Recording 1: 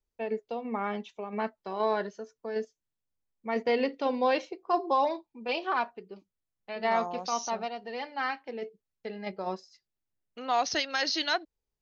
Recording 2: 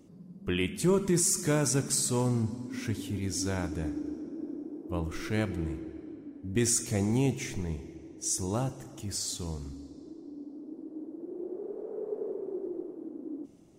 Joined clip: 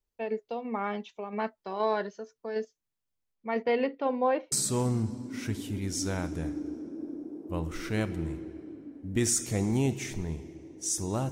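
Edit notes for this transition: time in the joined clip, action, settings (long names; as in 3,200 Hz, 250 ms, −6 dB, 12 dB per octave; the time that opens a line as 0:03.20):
recording 1
0:03.34–0:04.52: low-pass filter 4,900 Hz → 1,200 Hz
0:04.52: continue with recording 2 from 0:01.92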